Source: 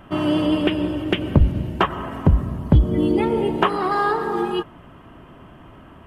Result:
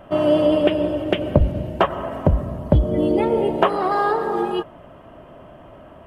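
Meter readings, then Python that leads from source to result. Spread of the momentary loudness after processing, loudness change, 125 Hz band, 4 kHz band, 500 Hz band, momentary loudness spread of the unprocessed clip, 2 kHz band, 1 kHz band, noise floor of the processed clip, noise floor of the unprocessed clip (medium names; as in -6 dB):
6 LU, +0.5 dB, -2.5 dB, -2.5 dB, +5.0 dB, 6 LU, -2.0 dB, +1.0 dB, -44 dBFS, -45 dBFS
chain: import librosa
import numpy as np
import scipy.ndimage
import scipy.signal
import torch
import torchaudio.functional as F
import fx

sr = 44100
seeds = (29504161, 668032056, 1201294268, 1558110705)

y = fx.peak_eq(x, sr, hz=600.0, db=13.5, octaves=0.62)
y = y * librosa.db_to_amplitude(-2.5)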